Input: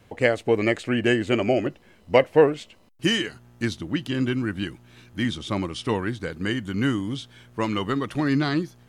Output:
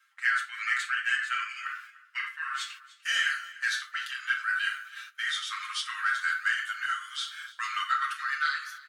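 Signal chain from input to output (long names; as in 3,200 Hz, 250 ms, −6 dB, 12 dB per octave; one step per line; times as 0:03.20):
rectangular room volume 550 cubic metres, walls furnished, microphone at 2.1 metres
reversed playback
downward compressor 8 to 1, threshold −25 dBFS, peak gain reduction 17 dB
reversed playback
Butterworth high-pass 1,300 Hz 72 dB per octave
high shelf with overshoot 1,800 Hz −8 dB, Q 1.5
in parallel at −6 dB: soft clipping −36 dBFS, distortion −14 dB
on the sum: noise gate −55 dBFS, range −12 dB
comb filter 7.4 ms, depth 77%
single-tap delay 297 ms −19.5 dB
level +8 dB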